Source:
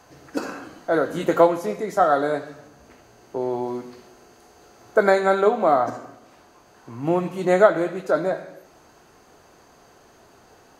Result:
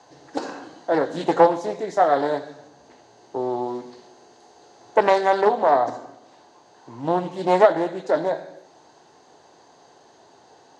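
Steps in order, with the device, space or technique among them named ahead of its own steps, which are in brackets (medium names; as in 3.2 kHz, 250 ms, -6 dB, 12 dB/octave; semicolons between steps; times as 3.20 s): full-range speaker at full volume (loudspeaker Doppler distortion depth 0.43 ms; cabinet simulation 150–7700 Hz, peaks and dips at 210 Hz -6 dB, 860 Hz +6 dB, 1.3 kHz -8 dB, 2.4 kHz -7 dB, 3.9 kHz +5 dB)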